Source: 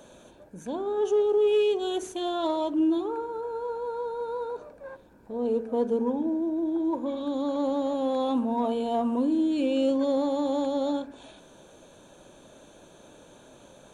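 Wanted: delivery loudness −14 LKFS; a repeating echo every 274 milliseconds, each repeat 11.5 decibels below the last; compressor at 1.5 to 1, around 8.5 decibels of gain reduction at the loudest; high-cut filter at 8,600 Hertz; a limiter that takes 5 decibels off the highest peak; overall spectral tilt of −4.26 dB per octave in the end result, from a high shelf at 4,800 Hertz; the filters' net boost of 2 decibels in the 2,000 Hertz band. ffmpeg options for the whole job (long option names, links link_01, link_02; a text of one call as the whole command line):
ffmpeg -i in.wav -af "lowpass=8600,equalizer=frequency=2000:width_type=o:gain=4.5,highshelf=frequency=4800:gain=-7.5,acompressor=threshold=-45dB:ratio=1.5,alimiter=level_in=5.5dB:limit=-24dB:level=0:latency=1,volume=-5.5dB,aecho=1:1:274|548|822:0.266|0.0718|0.0194,volume=22.5dB" out.wav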